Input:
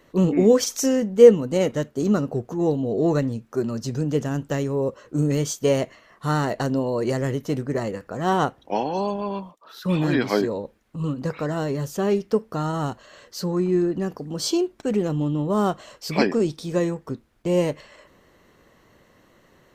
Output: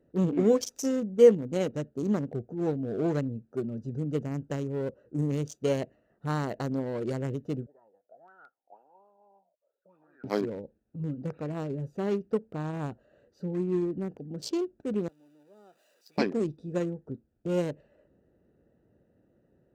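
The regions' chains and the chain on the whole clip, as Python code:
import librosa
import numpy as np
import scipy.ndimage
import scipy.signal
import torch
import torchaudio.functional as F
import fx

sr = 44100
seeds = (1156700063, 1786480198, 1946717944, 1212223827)

y = fx.chain(x, sr, fx.low_shelf(hz=330.0, db=-9.0),
    fx.auto_wah(base_hz=510.0, top_hz=1400.0, q=10.0, full_db=-20.5, direction='up'), at=(7.66, 10.24))
y = fx.chain(y, sr, fx.zero_step(step_db=-28.5),
    fx.highpass(hz=220.0, slope=12),
    fx.differentiator(), at=(15.08, 16.18))
y = fx.wiener(y, sr, points=41)
y = scipy.signal.sosfilt(scipy.signal.butter(2, 50.0, 'highpass', fs=sr, output='sos'), y)
y = F.gain(torch.from_numpy(y), -6.5).numpy()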